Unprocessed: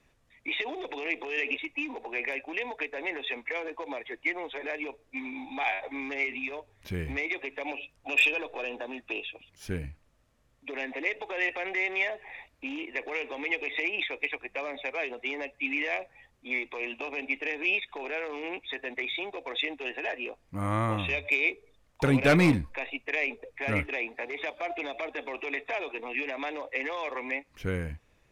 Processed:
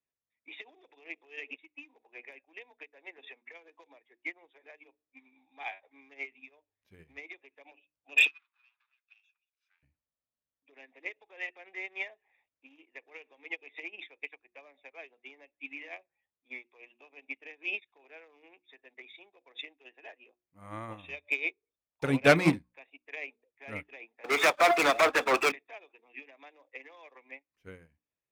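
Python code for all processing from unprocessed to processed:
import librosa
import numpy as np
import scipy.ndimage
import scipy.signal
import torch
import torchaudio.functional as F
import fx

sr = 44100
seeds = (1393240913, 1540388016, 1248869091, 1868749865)

y = fx.chain(x, sr, fx.highpass(hz=75.0, slope=12),
    fx.band_squash(depth_pct=100), at=(3.18, 3.87))
y = fx.chain(y, sr, fx.lower_of_two(delay_ms=0.79),
    fx.highpass(hz=1400.0, slope=24),
    fx.air_absorb(metres=190.0), at=(8.27, 9.83))
y = fx.chain(y, sr, fx.leveller(passes=5),
    fx.peak_eq(hz=1300.0, db=11.5, octaves=0.6),
    fx.band_widen(depth_pct=70), at=(24.24, 25.52))
y = fx.highpass(y, sr, hz=140.0, slope=6)
y = fx.hum_notches(y, sr, base_hz=60, count=6)
y = fx.upward_expand(y, sr, threshold_db=-40.0, expansion=2.5)
y = y * librosa.db_to_amplitude(3.5)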